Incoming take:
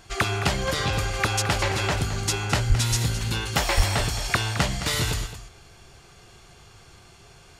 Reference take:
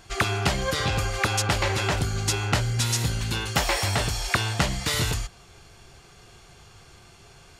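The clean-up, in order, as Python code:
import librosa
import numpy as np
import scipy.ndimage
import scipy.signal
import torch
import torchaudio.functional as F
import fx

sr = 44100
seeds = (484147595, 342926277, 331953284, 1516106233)

y = fx.fix_declip(x, sr, threshold_db=-10.5)
y = fx.fix_deplosive(y, sr, at_s=(2.68, 3.76))
y = fx.fix_echo_inverse(y, sr, delay_ms=216, level_db=-12.0)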